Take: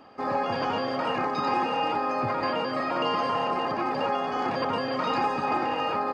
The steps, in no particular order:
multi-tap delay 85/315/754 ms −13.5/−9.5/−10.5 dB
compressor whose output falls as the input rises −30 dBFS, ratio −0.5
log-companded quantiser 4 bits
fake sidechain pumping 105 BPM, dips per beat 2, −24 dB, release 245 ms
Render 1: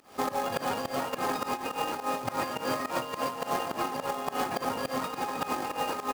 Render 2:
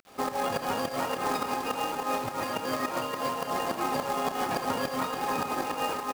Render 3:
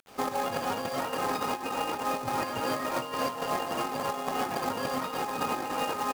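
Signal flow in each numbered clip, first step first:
log-companded quantiser, then multi-tap delay, then fake sidechain pumping, then compressor whose output falls as the input rises
fake sidechain pumping, then compressor whose output falls as the input rises, then log-companded quantiser, then multi-tap delay
fake sidechain pumping, then multi-tap delay, then log-companded quantiser, then compressor whose output falls as the input rises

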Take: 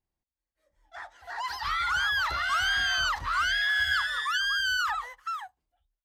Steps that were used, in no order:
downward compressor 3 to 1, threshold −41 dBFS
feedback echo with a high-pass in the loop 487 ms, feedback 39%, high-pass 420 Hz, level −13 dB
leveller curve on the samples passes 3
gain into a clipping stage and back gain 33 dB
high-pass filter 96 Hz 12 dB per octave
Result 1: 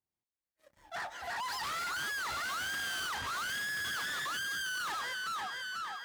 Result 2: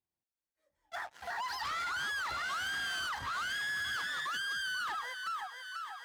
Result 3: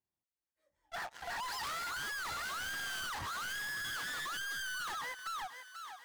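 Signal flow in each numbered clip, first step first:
feedback echo with a high-pass in the loop, then gain into a clipping stage and back, then downward compressor, then leveller curve on the samples, then high-pass filter
leveller curve on the samples, then feedback echo with a high-pass in the loop, then downward compressor, then gain into a clipping stage and back, then high-pass filter
high-pass filter, then leveller curve on the samples, then gain into a clipping stage and back, then feedback echo with a high-pass in the loop, then downward compressor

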